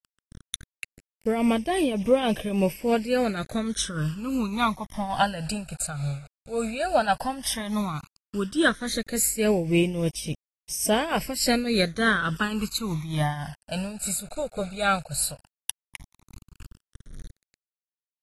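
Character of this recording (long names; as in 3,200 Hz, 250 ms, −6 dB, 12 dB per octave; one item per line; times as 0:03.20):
a quantiser's noise floor 8 bits, dither none
tremolo triangle 3.5 Hz, depth 70%
phaser sweep stages 12, 0.12 Hz, lowest notch 320–1,400 Hz
AAC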